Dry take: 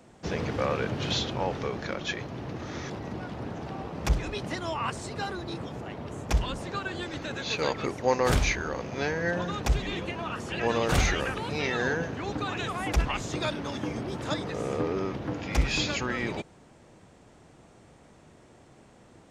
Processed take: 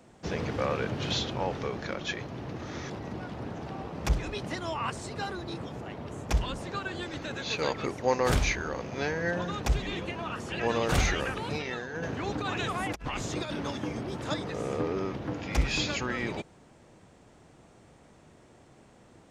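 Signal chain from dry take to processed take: 11.50–13.72 s: compressor with a negative ratio -31 dBFS, ratio -0.5; trim -1.5 dB

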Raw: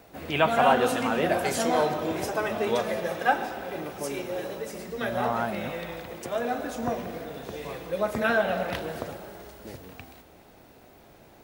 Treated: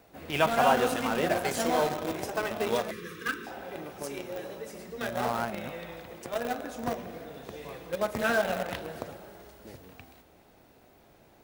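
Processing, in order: 2.91–3.47 s: elliptic band-stop 450–1100 Hz, stop band 40 dB; in parallel at -8 dB: bit crusher 4-bit; on the sum: trim -5.5 dB

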